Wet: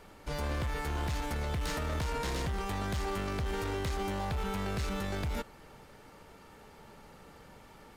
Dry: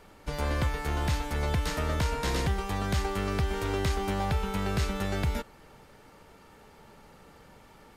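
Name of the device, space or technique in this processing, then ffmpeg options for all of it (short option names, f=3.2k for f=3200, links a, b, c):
limiter into clipper: -af "alimiter=level_in=1dB:limit=-24dB:level=0:latency=1:release=23,volume=-1dB,asoftclip=type=hard:threshold=-29.5dB"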